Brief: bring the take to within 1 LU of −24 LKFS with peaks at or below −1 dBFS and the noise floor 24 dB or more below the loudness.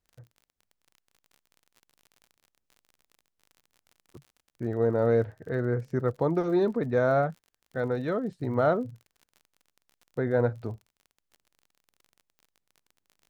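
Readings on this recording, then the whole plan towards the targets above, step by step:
crackle rate 40 per second; integrated loudness −28.0 LKFS; sample peak −12.5 dBFS; target loudness −24.0 LKFS
→ click removal
level +4 dB

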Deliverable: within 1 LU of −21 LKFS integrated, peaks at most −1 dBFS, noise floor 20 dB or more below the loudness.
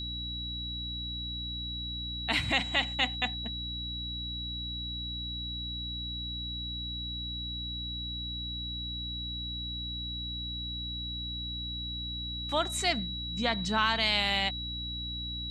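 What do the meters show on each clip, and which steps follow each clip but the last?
mains hum 60 Hz; hum harmonics up to 300 Hz; level of the hum −38 dBFS; interfering tone 3,900 Hz; level of the tone −36 dBFS; integrated loudness −32.5 LKFS; sample peak −13.5 dBFS; target loudness −21.0 LKFS
→ mains-hum notches 60/120/180/240/300 Hz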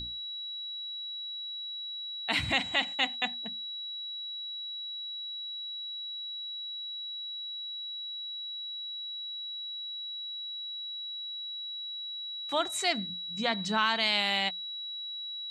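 mains hum none found; interfering tone 3,900 Hz; level of the tone −36 dBFS
→ notch filter 3,900 Hz, Q 30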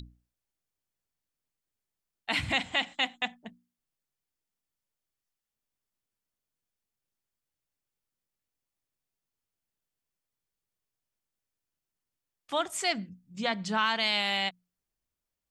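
interfering tone none found; integrated loudness −29.5 LKFS; sample peak −14.5 dBFS; target loudness −21.0 LKFS
→ level +8.5 dB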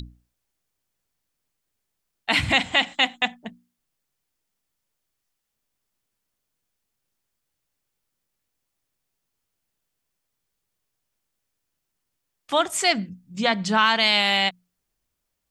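integrated loudness −21.0 LKFS; sample peak −6.0 dBFS; background noise floor −80 dBFS

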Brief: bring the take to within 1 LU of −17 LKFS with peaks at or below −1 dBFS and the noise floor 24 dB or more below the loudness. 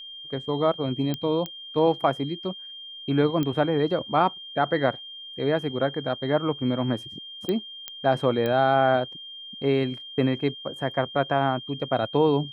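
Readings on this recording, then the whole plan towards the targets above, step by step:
number of clicks 6; interfering tone 3,200 Hz; level of the tone −38 dBFS; integrated loudness −25.5 LKFS; sample peak −7.5 dBFS; target loudness −17.0 LKFS
→ click removal
notch filter 3,200 Hz, Q 30
level +8.5 dB
brickwall limiter −1 dBFS

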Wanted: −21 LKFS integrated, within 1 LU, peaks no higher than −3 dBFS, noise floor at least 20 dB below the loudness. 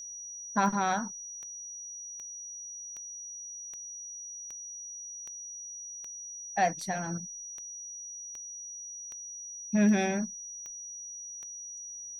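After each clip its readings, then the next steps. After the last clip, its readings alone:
number of clicks 16; interfering tone 5,800 Hz; level of the tone −40 dBFS; integrated loudness −34.5 LKFS; sample peak −12.5 dBFS; target loudness −21.0 LKFS
→ click removal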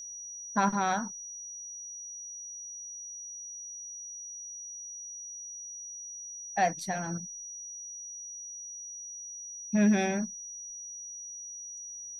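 number of clicks 1; interfering tone 5,800 Hz; level of the tone −40 dBFS
→ notch filter 5,800 Hz, Q 30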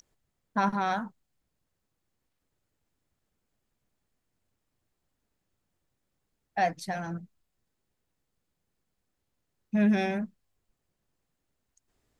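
interfering tone none found; integrated loudness −29.5 LKFS; sample peak −12.5 dBFS; target loudness −21.0 LKFS
→ level +8.5 dB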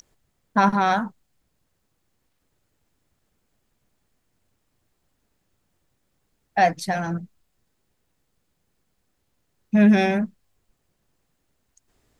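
integrated loudness −21.0 LKFS; sample peak −4.0 dBFS; background noise floor −73 dBFS

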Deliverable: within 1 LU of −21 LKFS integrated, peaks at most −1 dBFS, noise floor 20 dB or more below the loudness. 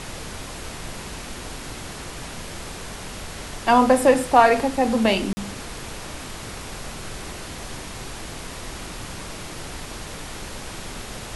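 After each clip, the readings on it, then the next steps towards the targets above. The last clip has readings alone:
number of dropouts 1; longest dropout 40 ms; background noise floor −36 dBFS; target noise floor −46 dBFS; integrated loudness −25.5 LKFS; sample peak −1.5 dBFS; target loudness −21.0 LKFS
→ repair the gap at 0:05.33, 40 ms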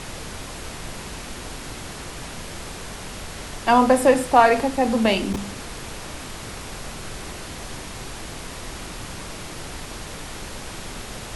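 number of dropouts 0; background noise floor −36 dBFS; target noise floor −46 dBFS
→ noise reduction from a noise print 10 dB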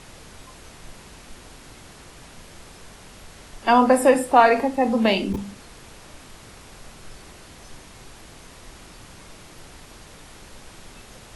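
background noise floor −46 dBFS; integrated loudness −18.5 LKFS; sample peak −1.5 dBFS; target loudness −21.0 LKFS
→ level −2.5 dB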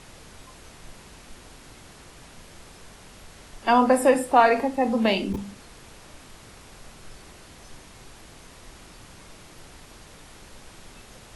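integrated loudness −21.0 LKFS; sample peak −4.0 dBFS; background noise floor −48 dBFS

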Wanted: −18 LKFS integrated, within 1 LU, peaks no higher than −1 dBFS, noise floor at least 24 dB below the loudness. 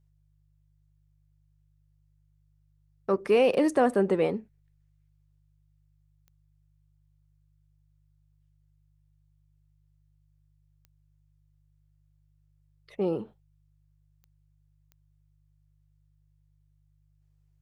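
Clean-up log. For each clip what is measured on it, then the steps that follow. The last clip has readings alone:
number of clicks 5; mains hum 50 Hz; hum harmonics up to 150 Hz; level of the hum −64 dBFS; integrated loudness −26.0 LKFS; sample peak −12.0 dBFS; target loudness −18.0 LKFS
→ click removal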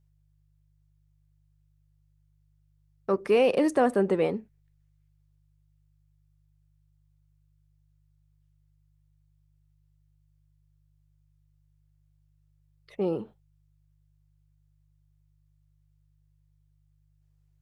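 number of clicks 0; mains hum 50 Hz; hum harmonics up to 150 Hz; level of the hum −64 dBFS
→ hum removal 50 Hz, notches 3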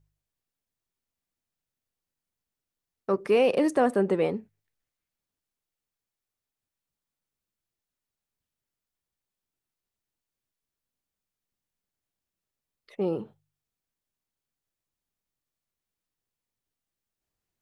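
mains hum none found; integrated loudness −25.5 LKFS; sample peak −12.0 dBFS; target loudness −18.0 LKFS
→ level +7.5 dB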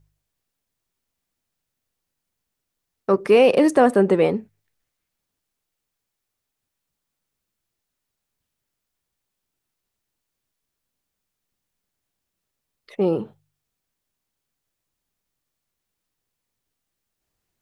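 integrated loudness −18.0 LKFS; sample peak −4.5 dBFS; background noise floor −82 dBFS

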